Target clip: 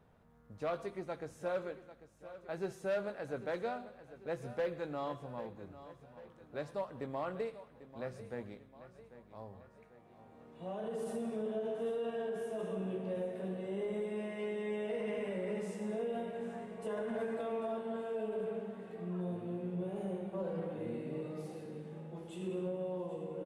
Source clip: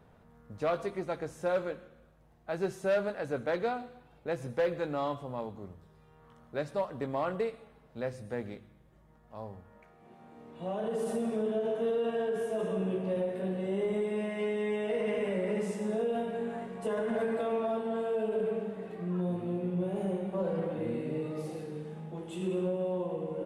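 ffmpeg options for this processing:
-af "aecho=1:1:794|1588|2382|3176|3970:0.188|0.0979|0.0509|0.0265|0.0138,volume=0.473"

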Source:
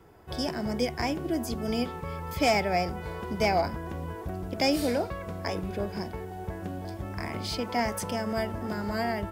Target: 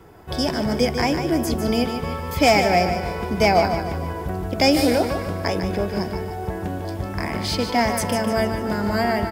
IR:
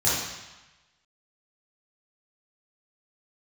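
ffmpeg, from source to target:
-af "aecho=1:1:149|298|447|596|745:0.398|0.187|0.0879|0.0413|0.0194,volume=2.51"

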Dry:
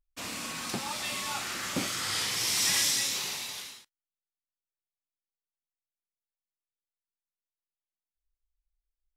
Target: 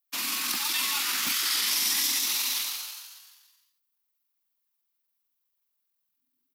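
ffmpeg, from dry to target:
-filter_complex "[0:a]asplit=8[s0][s1][s2][s3][s4][s5][s6][s7];[s1]adelay=208,afreqshift=120,volume=0.447[s8];[s2]adelay=416,afreqshift=240,volume=0.245[s9];[s3]adelay=624,afreqshift=360,volume=0.135[s10];[s4]adelay=832,afreqshift=480,volume=0.0741[s11];[s5]adelay=1040,afreqshift=600,volume=0.0407[s12];[s6]adelay=1248,afreqshift=720,volume=0.0224[s13];[s7]adelay=1456,afreqshift=840,volume=0.0123[s14];[s0][s8][s9][s10][s11][s12][s13][s14]amix=inputs=8:normalize=0,adynamicequalizer=threshold=0.00224:dfrequency=500:dqfactor=2.2:tfrequency=500:tqfactor=2.2:attack=5:release=100:ratio=0.375:range=2.5:mode=cutabove:tftype=bell,atempo=1.4,acrossover=split=220|490|3300[s15][s16][s17][s18];[s15]acrusher=bits=5:mix=0:aa=0.000001[s19];[s19][s16][s17][s18]amix=inputs=4:normalize=0,crystalizer=i=6:c=0,acrossover=split=580|1500[s20][s21][s22];[s20]acompressor=threshold=0.00398:ratio=4[s23];[s21]acompressor=threshold=0.00282:ratio=4[s24];[s22]acompressor=threshold=0.112:ratio=4[s25];[s23][s24][s25]amix=inputs=3:normalize=0,equalizer=f=125:t=o:w=1:g=-4,equalizer=f=250:t=o:w=1:g=9,equalizer=f=500:t=o:w=1:g=-9,equalizer=f=1000:t=o:w=1:g=8,equalizer=f=8000:t=o:w=1:g=-11"

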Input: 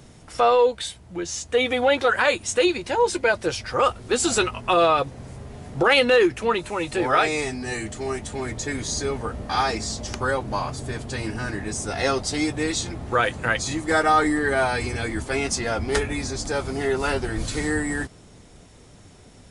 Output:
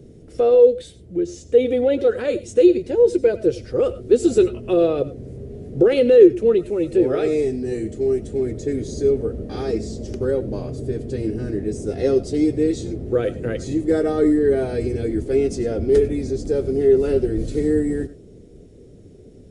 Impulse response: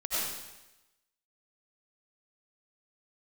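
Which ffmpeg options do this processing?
-filter_complex "[0:a]lowshelf=f=640:t=q:w=3:g=14,asplit=2[s0][s1];[1:a]atrim=start_sample=2205,afade=t=out:st=0.16:d=0.01,atrim=end_sample=7497[s2];[s1][s2]afir=irnorm=-1:irlink=0,volume=0.141[s3];[s0][s3]amix=inputs=2:normalize=0,volume=0.237"

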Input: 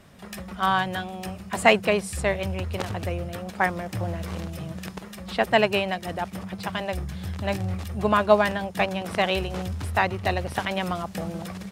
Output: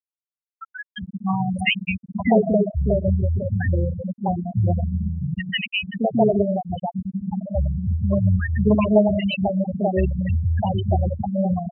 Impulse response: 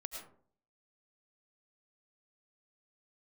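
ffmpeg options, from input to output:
-filter_complex "[0:a]acrossover=split=390|1400[s0][s1][s2];[s0]adelay=620[s3];[s1]adelay=660[s4];[s3][s4][s2]amix=inputs=3:normalize=0,asplit=2[s5][s6];[1:a]atrim=start_sample=2205,afade=t=out:st=0.33:d=0.01,atrim=end_sample=14994,highshelf=f=2000:g=4[s7];[s6][s7]afir=irnorm=-1:irlink=0,volume=0.473[s8];[s5][s8]amix=inputs=2:normalize=0,acrossover=split=480|3000[s9][s10][s11];[s10]acompressor=threshold=0.02:ratio=5[s12];[s9][s12][s11]amix=inputs=3:normalize=0,afftfilt=real='re*gte(hypot(re,im),0.158)':imag='im*gte(hypot(re,im),0.158)':win_size=1024:overlap=0.75,volume=2.66"

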